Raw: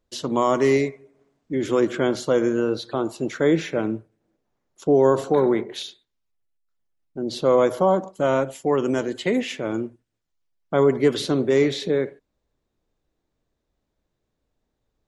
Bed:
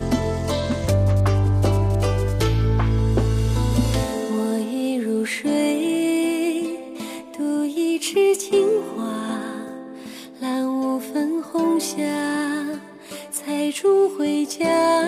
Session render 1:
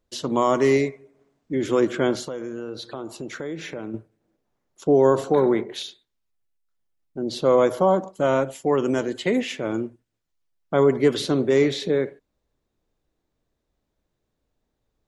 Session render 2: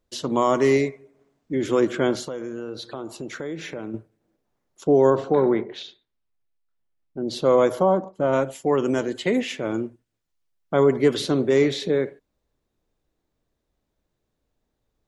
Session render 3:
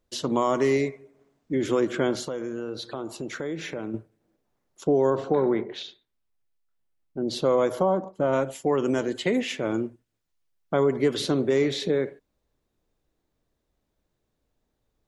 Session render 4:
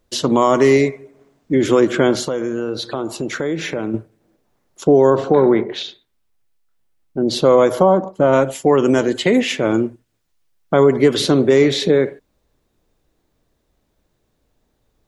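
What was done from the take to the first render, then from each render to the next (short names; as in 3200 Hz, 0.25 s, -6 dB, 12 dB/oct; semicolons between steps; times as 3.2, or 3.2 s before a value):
2.21–3.94 compressor 4:1, threshold -30 dBFS
5.1–7.28 air absorption 160 m; 7.82–8.32 LPF 1900 Hz -> 1100 Hz 6 dB/oct
compressor 2:1, threshold -21 dBFS, peak gain reduction 5.5 dB
gain +10 dB; limiter -3 dBFS, peak gain reduction 2 dB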